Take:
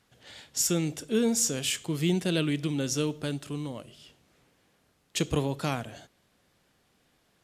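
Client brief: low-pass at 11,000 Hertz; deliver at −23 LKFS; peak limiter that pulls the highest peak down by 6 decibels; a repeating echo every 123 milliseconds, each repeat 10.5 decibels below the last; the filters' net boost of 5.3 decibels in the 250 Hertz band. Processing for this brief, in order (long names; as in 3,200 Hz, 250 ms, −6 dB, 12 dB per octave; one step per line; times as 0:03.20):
low-pass filter 11,000 Hz
parametric band 250 Hz +7 dB
brickwall limiter −16.5 dBFS
repeating echo 123 ms, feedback 30%, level −10.5 dB
level +4.5 dB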